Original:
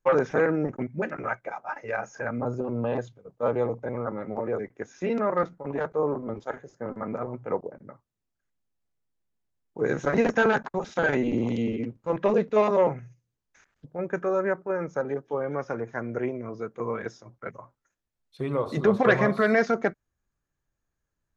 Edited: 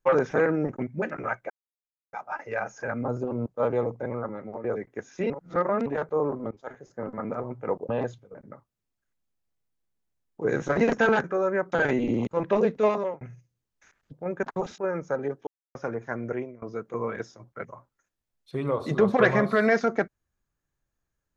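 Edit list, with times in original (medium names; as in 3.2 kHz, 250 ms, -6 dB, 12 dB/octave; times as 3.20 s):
1.50 s: insert silence 0.63 s
2.83–3.29 s: move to 7.72 s
3.93–4.47 s: fade out, to -8 dB
5.13–5.69 s: reverse
6.34–6.74 s: fade in, from -16.5 dB
10.61–10.96 s: swap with 14.16–14.64 s
11.51–12.00 s: delete
12.55–12.94 s: fade out
15.33–15.61 s: mute
16.14–16.48 s: fade out, to -21.5 dB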